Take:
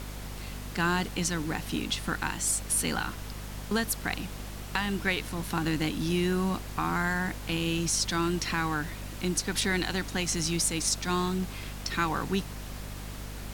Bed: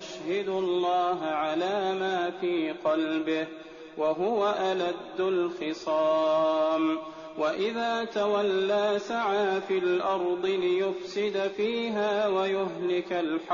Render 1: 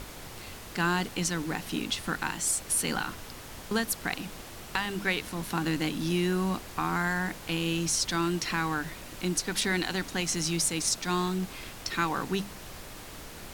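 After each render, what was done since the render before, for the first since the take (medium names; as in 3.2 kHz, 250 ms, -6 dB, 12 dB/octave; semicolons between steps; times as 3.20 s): hum notches 50/100/150/200/250 Hz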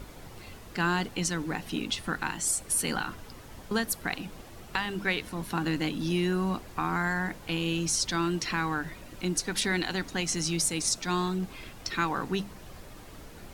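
noise reduction 8 dB, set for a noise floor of -44 dBFS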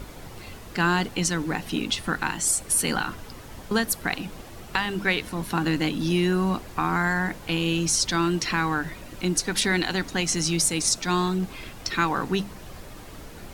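trim +5 dB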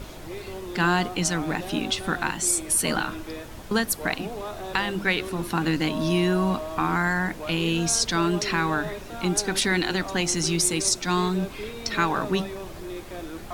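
add bed -9 dB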